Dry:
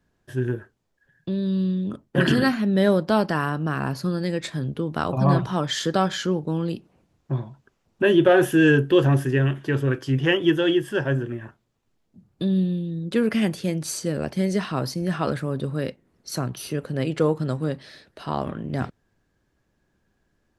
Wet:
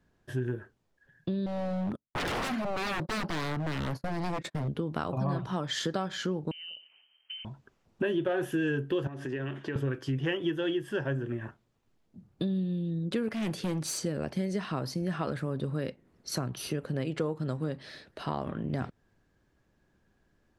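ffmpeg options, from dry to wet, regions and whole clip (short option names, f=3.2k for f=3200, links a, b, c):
-filter_complex "[0:a]asettb=1/sr,asplit=3[a][b][c];[a]atrim=end=1.464[d];[b]atrim=start=1.46:end=4.68,asetpts=PTS-STARTPTS,afade=t=in:d=0.004:c=qsin,afade=t=out:st=3.216:d=0.004:c=qsin,agate=range=-34dB:threshold=-34dB:ratio=16:release=100:detection=peak,equalizer=f=4k:w=0.43:g=-5.5,aeval=exprs='0.0562*(abs(mod(val(0)/0.0562+3,4)-2)-1)':c=same[e];[c]atrim=start=4.676[f];[d][e]acrossfade=d=0.004:c1=hsin:c2=qsin[g];[g][f]acrossfade=d=0.004:c1=qsin:c2=hsin,asettb=1/sr,asplit=3[h][i][j];[h]atrim=end=6.514[k];[i]atrim=start=6.51:end=7.45,asetpts=PTS-STARTPTS,afade=t=in:d=0.004:c=qsin,afade=t=out:st=0.936:d=0.004:c=qsin,acompressor=threshold=-37dB:ratio=12:attack=3.2:release=140:knee=1:detection=peak,lowpass=f=2.7k:t=q:w=0.5098,lowpass=f=2.7k:t=q:w=0.6013,lowpass=f=2.7k:t=q:w=0.9,lowpass=f=2.7k:t=q:w=2.563,afreqshift=-3200[l];[j]atrim=start=7.446[m];[k][l]acrossfade=d=0.004:c1=hsin:c2=qsin[n];[n][m]acrossfade=d=0.004:c1=qsin:c2=hsin,asettb=1/sr,asplit=3[o][p][q];[o]atrim=end=9.074[r];[p]atrim=start=9.07:end=9.76,asetpts=PTS-STARTPTS,afade=t=in:d=0.004:c=qsin,afade=t=out:st=0.686:d=0.004:c=qsin,highpass=190,lowpass=6.8k,acompressor=threshold=-30dB:ratio=5:attack=3.2:release=140:knee=1:detection=peak[s];[q]atrim=start=9.756[t];[r][s]acrossfade=d=0.004:c1=hsin:c2=qsin[u];[u][t]acrossfade=d=0.004:c1=qsin:c2=hsin,asettb=1/sr,asplit=3[v][w][x];[v]atrim=end=13.284[y];[w]atrim=start=13.28:end=13.99,asetpts=PTS-STARTPTS,afade=t=in:d=0.004:c=qsin,afade=t=out:st=0.706:d=0.004:c=qsin,highpass=f=94:p=1,asoftclip=type=hard:threshold=-25dB[z];[x]atrim=start=13.986[aa];[y][z]acrossfade=d=0.004:c1=hsin:c2=qsin[ab];[ab][aa]acrossfade=d=0.004:c1=qsin:c2=hsin,highshelf=f=6.2k:g=-5.5,acompressor=threshold=-29dB:ratio=4"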